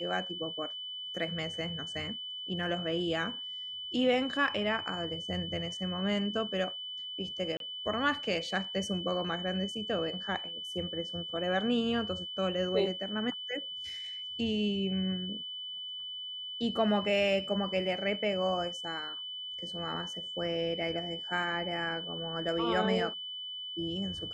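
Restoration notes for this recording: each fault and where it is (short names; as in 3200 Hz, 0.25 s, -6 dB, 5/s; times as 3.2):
tone 3000 Hz -38 dBFS
7.57–7.6 gap 32 ms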